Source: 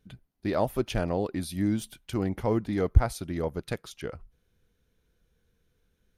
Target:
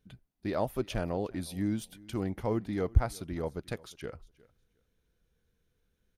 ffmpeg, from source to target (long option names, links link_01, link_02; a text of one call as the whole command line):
ffmpeg -i in.wav -af "aecho=1:1:358|716:0.0708|0.0127,volume=-4.5dB" out.wav